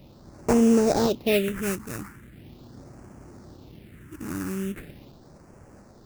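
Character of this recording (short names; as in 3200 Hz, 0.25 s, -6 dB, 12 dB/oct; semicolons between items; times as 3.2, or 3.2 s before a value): aliases and images of a low sample rate 3200 Hz, jitter 20%; phasing stages 4, 0.4 Hz, lowest notch 550–3600 Hz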